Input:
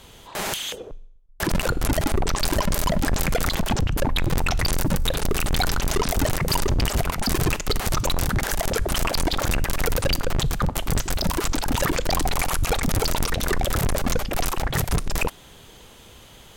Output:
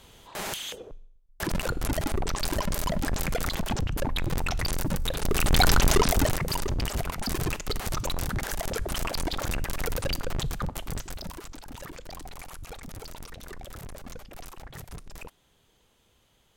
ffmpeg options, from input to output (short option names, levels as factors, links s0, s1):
-af "volume=1.58,afade=t=in:st=5.18:d=0.57:silence=0.316228,afade=t=out:st=5.75:d=0.74:silence=0.281838,afade=t=out:st=10.46:d=1.02:silence=0.251189"